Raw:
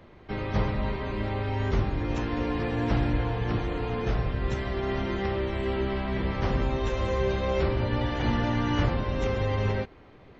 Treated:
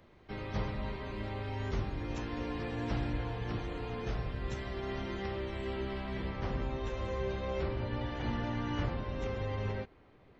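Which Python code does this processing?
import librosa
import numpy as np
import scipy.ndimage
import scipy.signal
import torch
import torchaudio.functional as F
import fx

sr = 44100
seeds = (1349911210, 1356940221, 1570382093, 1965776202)

y = fx.high_shelf(x, sr, hz=4700.0, db=fx.steps((0.0, 8.0), (6.29, -2.0)))
y = y * librosa.db_to_amplitude(-9.0)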